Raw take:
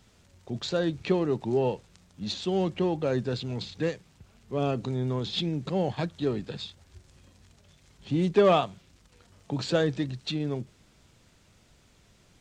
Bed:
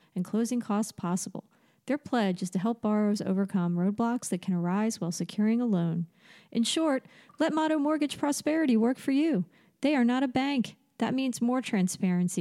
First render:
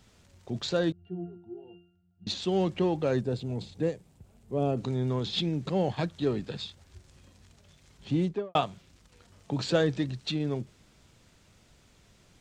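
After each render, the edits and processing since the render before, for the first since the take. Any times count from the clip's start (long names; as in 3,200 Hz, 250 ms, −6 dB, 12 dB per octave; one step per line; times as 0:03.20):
0:00.92–0:02.27: resonances in every octave F, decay 0.52 s
0:03.21–0:04.77: flat-topped bell 2,600 Hz −9 dB 2.9 octaves
0:08.10–0:08.55: fade out and dull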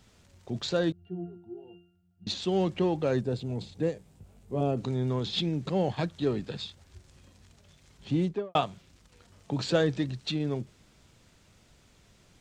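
0:03.94–0:04.61: double-tracking delay 20 ms −4 dB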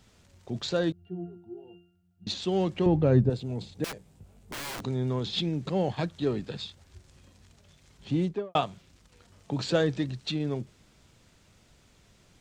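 0:02.86–0:03.30: RIAA equalisation playback
0:03.84–0:04.82: wrap-around overflow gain 32 dB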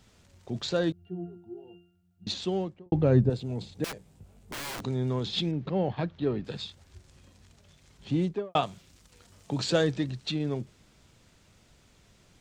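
0:02.37–0:02.92: fade out and dull
0:05.51–0:06.45: high-frequency loss of the air 240 metres
0:08.63–0:09.91: high-shelf EQ 5,100 Hz +7.5 dB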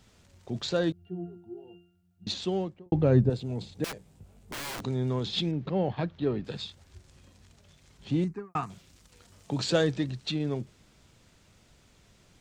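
0:08.24–0:08.70: phaser with its sweep stopped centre 1,400 Hz, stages 4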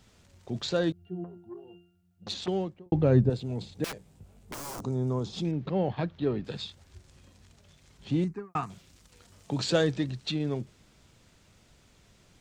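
0:01.24–0:02.48: saturating transformer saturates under 1,500 Hz
0:04.54–0:05.45: flat-topped bell 2,600 Hz −11.5 dB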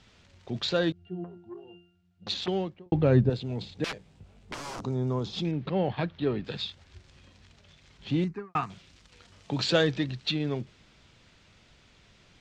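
low-pass filter 3,400 Hz 12 dB per octave
high-shelf EQ 2,000 Hz +11 dB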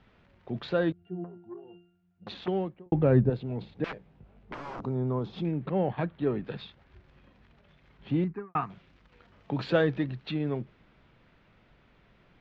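low-pass filter 1,900 Hz 12 dB per octave
parametric band 85 Hz −11.5 dB 0.34 octaves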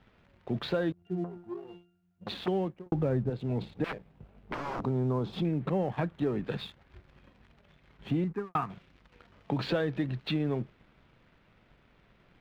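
downward compressor 6 to 1, threshold −29 dBFS, peak gain reduction 12.5 dB
leveller curve on the samples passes 1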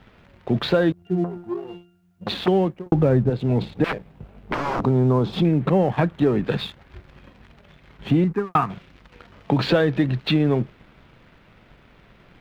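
level +11 dB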